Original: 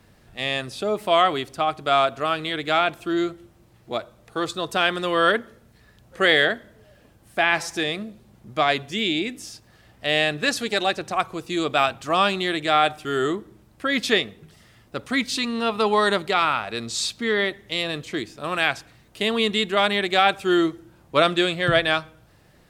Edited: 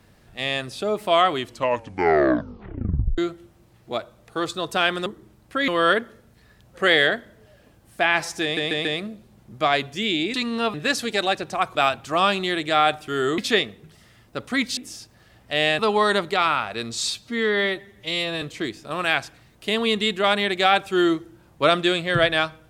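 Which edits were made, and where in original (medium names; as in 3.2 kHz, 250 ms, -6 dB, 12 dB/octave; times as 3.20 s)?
1.32 s: tape stop 1.86 s
7.81 s: stutter 0.14 s, 4 plays
9.30–10.32 s: swap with 15.36–15.76 s
11.33–11.72 s: delete
13.35–13.97 s: move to 5.06 s
17.07–17.95 s: stretch 1.5×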